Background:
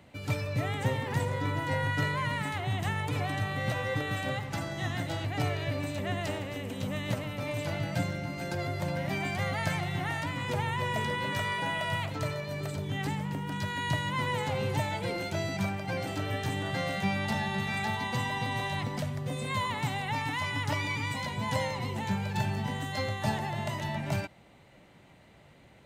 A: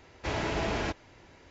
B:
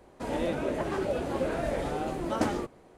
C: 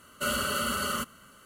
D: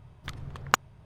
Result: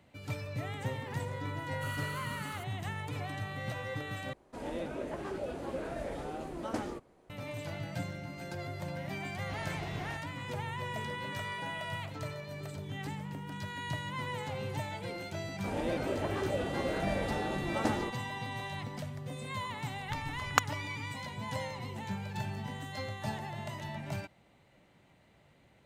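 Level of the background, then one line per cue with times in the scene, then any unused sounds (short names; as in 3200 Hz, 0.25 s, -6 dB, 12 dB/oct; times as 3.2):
background -7 dB
1.6 add C -17 dB
4.33 replace with B -8 dB
9.25 add A -13.5 dB
15.44 add B -4 dB
19.84 add D -3.5 dB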